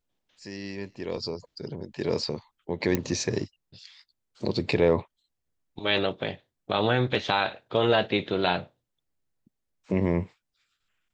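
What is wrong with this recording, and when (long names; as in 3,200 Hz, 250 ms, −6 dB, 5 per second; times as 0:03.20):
0:02.95: click −11 dBFS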